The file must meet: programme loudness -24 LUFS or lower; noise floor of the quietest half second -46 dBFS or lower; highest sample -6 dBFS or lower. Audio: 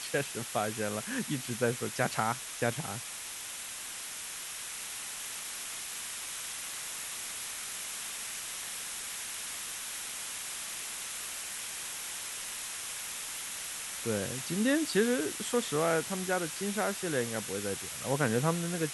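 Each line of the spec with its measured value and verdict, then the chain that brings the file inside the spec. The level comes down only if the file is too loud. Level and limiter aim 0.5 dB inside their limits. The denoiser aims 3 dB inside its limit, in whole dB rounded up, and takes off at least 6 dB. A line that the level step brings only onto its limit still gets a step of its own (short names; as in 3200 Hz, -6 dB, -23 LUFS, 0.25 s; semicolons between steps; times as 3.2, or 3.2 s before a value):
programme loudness -34.0 LUFS: OK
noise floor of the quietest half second -42 dBFS: fail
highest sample -13.5 dBFS: OK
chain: denoiser 7 dB, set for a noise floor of -42 dBFS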